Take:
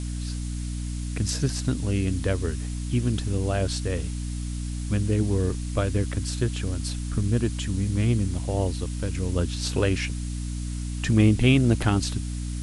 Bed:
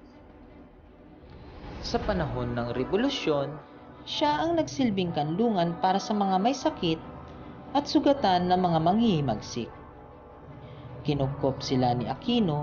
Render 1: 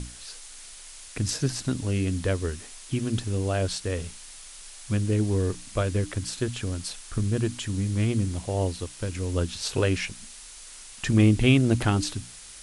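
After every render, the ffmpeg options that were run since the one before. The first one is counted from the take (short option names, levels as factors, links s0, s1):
-af "bandreject=f=60:t=h:w=6,bandreject=f=120:t=h:w=6,bandreject=f=180:t=h:w=6,bandreject=f=240:t=h:w=6,bandreject=f=300:t=h:w=6"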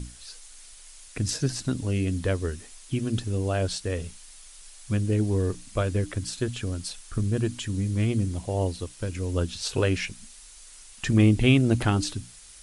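-af "afftdn=nr=6:nf=-45"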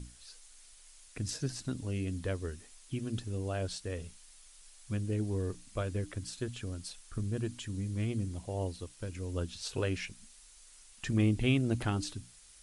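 -af "volume=0.355"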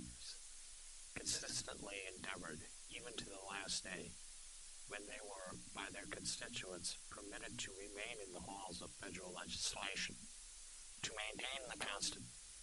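-af "afftfilt=real='re*lt(hypot(re,im),0.0316)':imag='im*lt(hypot(re,im),0.0316)':win_size=1024:overlap=0.75"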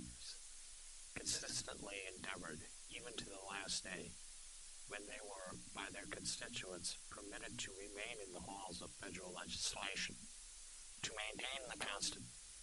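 -af anull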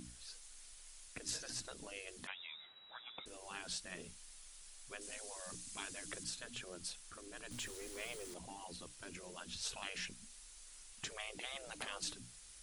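-filter_complex "[0:a]asettb=1/sr,asplit=3[s0][s1][s2];[s0]atrim=end=2.274[s3];[s1]atrim=start=2.27:end=3.26,asetpts=PTS-STARTPTS,afade=t=in:d=0.004:c=qsin,afade=t=out:st=0.986:d=0.004:c=qsin,lowpass=f=3300:t=q:w=0.5098,lowpass=f=3300:t=q:w=0.6013,lowpass=f=3300:t=q:w=0.9,lowpass=f=3300:t=q:w=2.563,afreqshift=-3900[s4];[s2]atrim=start=3.256[s5];[s3][s4]acrossfade=d=0.004:c1=hsin:c2=qsin[s6];[s6][s5]acrossfade=d=0.004:c1=qsin:c2=hsin,asettb=1/sr,asplit=3[s7][s8][s9];[s7]atrim=end=5.014[s10];[s8]atrim=start=5.01:end=6.24,asetpts=PTS-STARTPTS,afade=t=in:d=0.004:c=qsin,afade=t=out:st=1.226:d=0.004:c=qsin,equalizer=f=7700:w=0.58:g=8[s11];[s9]atrim=start=6.236[s12];[s10][s11]acrossfade=d=0.004:c1=hsin:c2=qsin[s13];[s13][s12]acrossfade=d=0.004:c1=qsin:c2=hsin,asettb=1/sr,asplit=3[s14][s15][s16];[s14]atrim=end=7.514[s17];[s15]atrim=start=7.51:end=8.34,asetpts=PTS-STARTPTS,afade=t=in:d=0.004:c=qsin,afade=t=out:st=0.826:d=0.004:c=qsin,aeval=exprs='val(0)+0.5*0.00355*sgn(val(0))':c=same[s18];[s16]atrim=start=8.336[s19];[s17][s18]acrossfade=d=0.004:c1=hsin:c2=qsin[s20];[s20][s19]acrossfade=d=0.004:c1=qsin:c2=hsin"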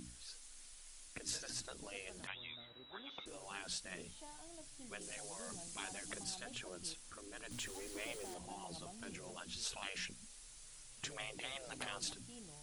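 -filter_complex "[1:a]volume=0.0251[s0];[0:a][s0]amix=inputs=2:normalize=0"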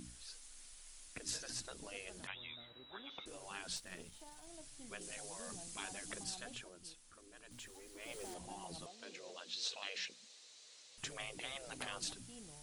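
-filter_complex "[0:a]asettb=1/sr,asplit=3[s0][s1][s2];[s0]atrim=end=3.764[s3];[s1]atrim=start=3.76:end=4.47,asetpts=PTS-STARTPTS,afade=t=in:d=0.004:c=qsin,afade=t=out:st=0.706:d=0.004:c=qsin,aeval=exprs='if(lt(val(0),0),0.447*val(0),val(0))':c=same[s4];[s2]atrim=start=4.466[s5];[s3][s4]acrossfade=d=0.004:c1=hsin:c2=qsin[s6];[s6][s5]acrossfade=d=0.004:c1=qsin:c2=hsin,asettb=1/sr,asplit=3[s7][s8][s9];[s7]atrim=end=8.864[s10];[s8]atrim=start=8.86:end=10.98,asetpts=PTS-STARTPTS,afade=t=in:d=0.004:c=qsin,afade=t=out:st=2.116:d=0.004:c=qsin,highpass=400,equalizer=f=490:t=q:w=4:g=6,equalizer=f=890:t=q:w=4:g=-4,equalizer=f=1400:t=q:w=4:g=-5,equalizer=f=4000:t=q:w=4:g=7,lowpass=f=6900:w=0.5412,lowpass=f=6900:w=1.3066[s11];[s9]atrim=start=10.976[s12];[s10][s11]acrossfade=d=0.004:c1=hsin:c2=qsin[s13];[s13][s12]acrossfade=d=0.004:c1=qsin:c2=hsin,asplit=3[s14][s15][s16];[s14]atrim=end=6.72,asetpts=PTS-STARTPTS,afade=t=out:st=6.5:d=0.22:silence=0.398107[s17];[s15]atrim=start=6.72:end=7.99,asetpts=PTS-STARTPTS,volume=0.398[s18];[s16]atrim=start=7.99,asetpts=PTS-STARTPTS,afade=t=in:d=0.22:silence=0.398107[s19];[s17][s18][s19]concat=n=3:v=0:a=1"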